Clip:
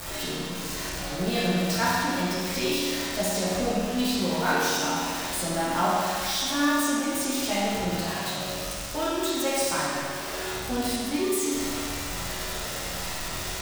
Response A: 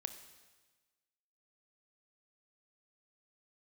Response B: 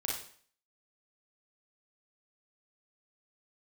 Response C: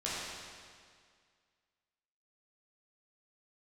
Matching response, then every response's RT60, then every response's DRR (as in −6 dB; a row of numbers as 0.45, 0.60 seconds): C; 1.3, 0.50, 2.0 seconds; 8.5, −3.5, −9.0 decibels